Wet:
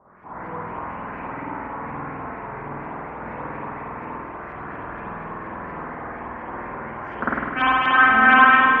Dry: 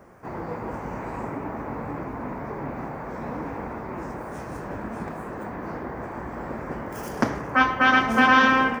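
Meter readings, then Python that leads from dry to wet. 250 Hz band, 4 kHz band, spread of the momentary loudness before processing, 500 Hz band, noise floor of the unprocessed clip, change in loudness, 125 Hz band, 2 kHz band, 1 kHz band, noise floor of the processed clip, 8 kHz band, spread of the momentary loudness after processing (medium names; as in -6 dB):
-2.5 dB, 0.0 dB, 17 LU, -2.0 dB, -36 dBFS, +7.0 dB, -2.5 dB, +5.0 dB, +4.5 dB, -35 dBFS, under -25 dB, 20 LU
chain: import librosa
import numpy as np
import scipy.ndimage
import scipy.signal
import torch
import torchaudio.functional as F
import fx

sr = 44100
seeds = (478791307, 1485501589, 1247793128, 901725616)

y = fx.filter_lfo_lowpass(x, sr, shape='saw_up', hz=4.2, low_hz=910.0, high_hz=3300.0, q=5.1)
y = fx.rev_spring(y, sr, rt60_s=1.5, pass_ms=(49,), chirp_ms=65, drr_db=-8.5)
y = y * 10.0 ** (-12.0 / 20.0)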